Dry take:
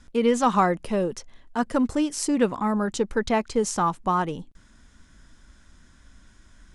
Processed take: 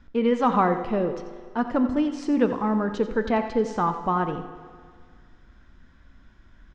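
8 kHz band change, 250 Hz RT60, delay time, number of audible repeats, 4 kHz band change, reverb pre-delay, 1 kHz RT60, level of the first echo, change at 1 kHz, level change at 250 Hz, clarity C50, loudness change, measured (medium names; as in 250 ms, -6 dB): under -15 dB, 1.9 s, 89 ms, 1, -6.0 dB, 8 ms, 1.9 s, -12.5 dB, -0.5 dB, +0.5 dB, 8.5 dB, 0.0 dB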